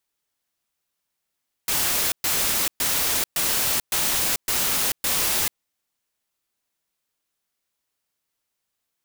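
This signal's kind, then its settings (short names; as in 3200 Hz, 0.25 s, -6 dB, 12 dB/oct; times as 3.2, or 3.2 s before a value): noise bursts white, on 0.44 s, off 0.12 s, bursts 7, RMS -22.5 dBFS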